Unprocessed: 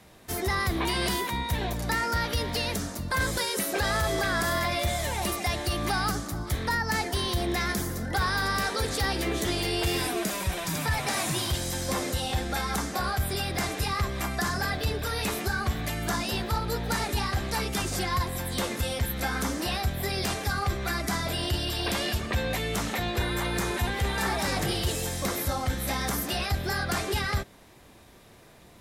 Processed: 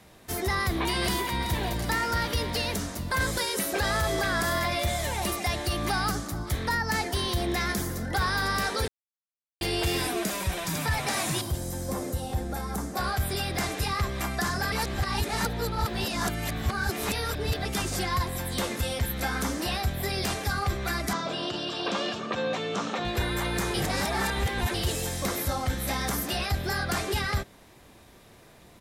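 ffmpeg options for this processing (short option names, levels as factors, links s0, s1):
-filter_complex "[0:a]asplit=2[s0][s1];[s1]afade=t=in:st=0.64:d=0.01,afade=t=out:st=1.39:d=0.01,aecho=0:1:380|760|1140|1520|1900|2280|2660|3040|3420|3800|4180|4560:0.298538|0.223904|0.167928|0.125946|0.0944594|0.0708445|0.0531334|0.03985|0.0298875|0.0224157|0.0168117|0.0126088[s2];[s0][s2]amix=inputs=2:normalize=0,asettb=1/sr,asplit=3[s3][s4][s5];[s3]atrim=end=11.414[s6];[s4]atrim=start=11.41:end=12.97,asetpts=PTS-STARTPTS,afade=t=in:d=0.004:c=qsin,afade=t=out:st=1.556:d=0.004:c=qsin,equalizer=f=3000:w=0.5:g=-13.5[s7];[s5]atrim=start=12.966[s8];[s6][s7]acrossfade=d=0.004:c1=hsin:c2=qsin[s9];[s9][s8]acrossfade=d=0.004:c1=qsin:c2=hsin,asettb=1/sr,asplit=3[s10][s11][s12];[s10]atrim=end=21.134[s13];[s11]atrim=start=21.13:end=23.05,asetpts=PTS-STARTPTS,afade=t=in:d=0.004:c=qsin,afade=t=out:st=1.916:d=0.004:c=qsin,highpass=f=160:w=0.5412,highpass=f=160:w=1.3066,equalizer=f=510:t=q:w=4:g=4,equalizer=f=1200:t=q:w=4:g=6,equalizer=f=2000:t=q:w=4:g=-8,equalizer=f=4800:t=q:w=4:g=-5,lowpass=f=6200:w=0.5412,lowpass=f=6200:w=1.3066[s14];[s12]atrim=start=23.046[s15];[s13][s14]acrossfade=d=0.004:c1=hsin:c2=qsin[s16];[s16][s15]acrossfade=d=0.004:c1=qsin:c2=hsin,asplit=7[s17][s18][s19][s20][s21][s22][s23];[s17]atrim=end=8.88,asetpts=PTS-STARTPTS,afade=t=out:st=8.876:d=0.004:c=hsin[s24];[s18]atrim=start=8.88:end=9.61,asetpts=PTS-STARTPTS,volume=0[s25];[s19]atrim=start=9.61:end=14.722,asetpts=PTS-STARTPTS,afade=t=in:d=0.004:c=hsin[s26];[s20]atrim=start=14.718:end=17.652,asetpts=PTS-STARTPTS,areverse[s27];[s21]atrim=start=17.648:end=23.742[s28];[s22]atrim=start=23.738:end=24.742,asetpts=PTS-STARTPTS,areverse[s29];[s23]atrim=start=24.738[s30];[s24][s25][s26]concat=n=3:v=0:a=1[s31];[s31][s27]acrossfade=d=0.004:c1=hsin:c2=hsin[s32];[s32][s28]acrossfade=d=0.004:c1=hsin:c2=hsin[s33];[s33][s29]acrossfade=d=0.004:c1=hsin:c2=hsin[s34];[s34][s30]acrossfade=d=0.004:c1=hsin:c2=hsin"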